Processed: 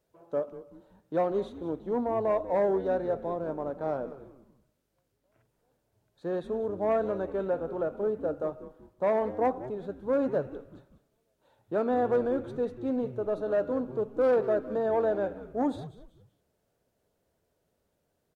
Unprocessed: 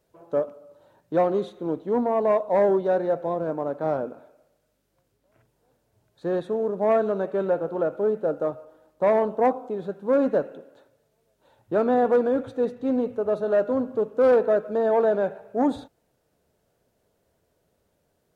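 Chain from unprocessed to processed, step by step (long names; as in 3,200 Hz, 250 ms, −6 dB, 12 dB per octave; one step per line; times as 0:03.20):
echo with shifted repeats 190 ms, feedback 36%, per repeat −130 Hz, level −14.5 dB
level −6 dB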